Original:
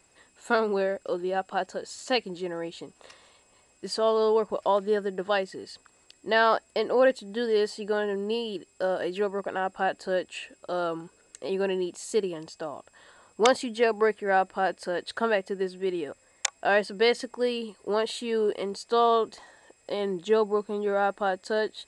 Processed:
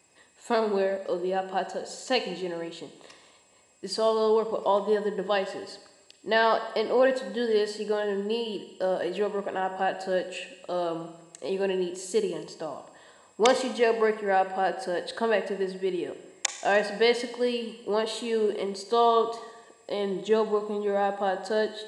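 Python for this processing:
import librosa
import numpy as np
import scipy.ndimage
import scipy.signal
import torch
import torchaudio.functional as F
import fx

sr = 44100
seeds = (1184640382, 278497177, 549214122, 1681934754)

y = scipy.signal.sosfilt(scipy.signal.butter(2, 95.0, 'highpass', fs=sr, output='sos'), x)
y = fx.notch(y, sr, hz=1400.0, q=5.1)
y = fx.rev_schroeder(y, sr, rt60_s=1.1, comb_ms=33, drr_db=9.0)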